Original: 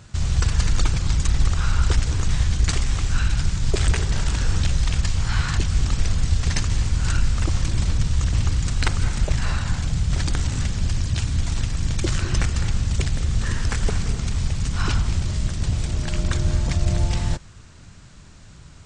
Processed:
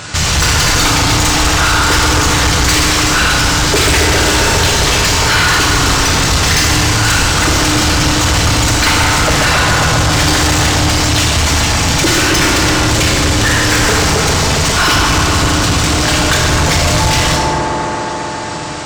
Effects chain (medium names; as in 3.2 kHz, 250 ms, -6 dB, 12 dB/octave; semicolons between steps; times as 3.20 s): feedback echo behind a band-pass 135 ms, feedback 85%, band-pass 580 Hz, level -3.5 dB; FDN reverb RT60 1.2 s, low-frequency decay 1.45×, high-frequency decay 0.95×, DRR 1 dB; overdrive pedal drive 32 dB, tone 7.1 kHz, clips at -3 dBFS